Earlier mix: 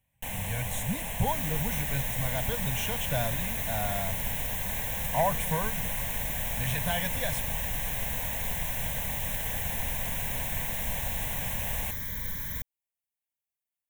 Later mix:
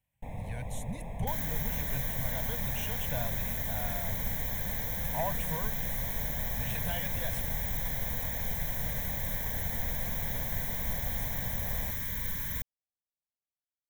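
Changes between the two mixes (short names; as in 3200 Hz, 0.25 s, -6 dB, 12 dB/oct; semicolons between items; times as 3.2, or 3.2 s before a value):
speech -7.5 dB; first sound: add running mean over 30 samples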